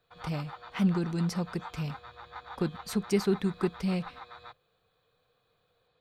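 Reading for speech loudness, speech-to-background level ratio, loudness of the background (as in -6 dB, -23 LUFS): -31.5 LUFS, 14.5 dB, -46.0 LUFS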